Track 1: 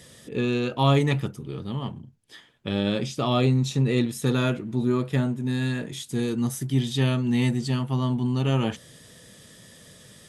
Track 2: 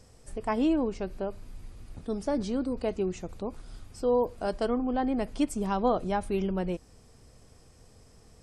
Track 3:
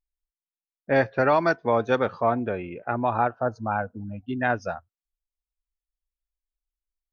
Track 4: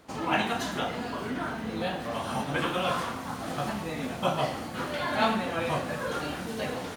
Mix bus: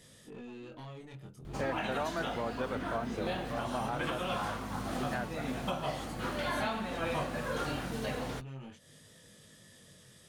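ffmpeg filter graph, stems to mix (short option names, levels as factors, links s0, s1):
-filter_complex "[0:a]acompressor=threshold=0.0251:ratio=16,asoftclip=type=tanh:threshold=0.0211,flanger=delay=19:depth=5.1:speed=0.43,volume=0.562,asplit=2[s0][s1];[1:a]volume=0.106[s2];[2:a]adelay=700,volume=0.335[s3];[3:a]aeval=exprs='val(0)+0.00794*(sin(2*PI*50*n/s)+sin(2*PI*2*50*n/s)/2+sin(2*PI*3*50*n/s)/3+sin(2*PI*4*50*n/s)/4+sin(2*PI*5*50*n/s)/5)':c=same,adelay=1450,volume=0.75[s4];[s1]apad=whole_len=371869[s5];[s2][s5]sidechaincompress=threshold=0.00112:ratio=8:attack=16:release=390[s6];[s0][s6][s3][s4]amix=inputs=4:normalize=0,alimiter=limit=0.0668:level=0:latency=1:release=481"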